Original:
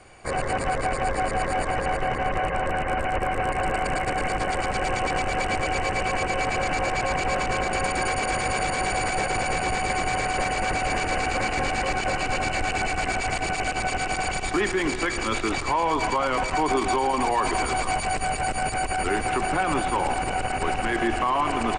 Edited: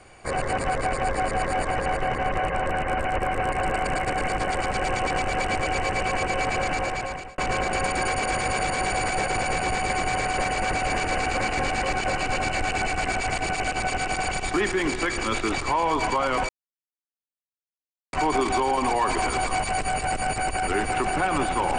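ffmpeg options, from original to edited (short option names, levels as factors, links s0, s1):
-filter_complex "[0:a]asplit=3[s0][s1][s2];[s0]atrim=end=7.38,asetpts=PTS-STARTPTS,afade=t=out:st=6.51:d=0.87:c=qsin[s3];[s1]atrim=start=7.38:end=16.49,asetpts=PTS-STARTPTS,afade=t=in:d=0.004:c=hsin,afade=t=out:st=9.106:d=0.004:c=hsin,apad=pad_dur=1.64[s4];[s2]atrim=start=16.49,asetpts=PTS-STARTPTS,afade=t=in:d=0.004:c=hsin[s5];[s3][s4][s5]concat=n=3:v=0:a=1"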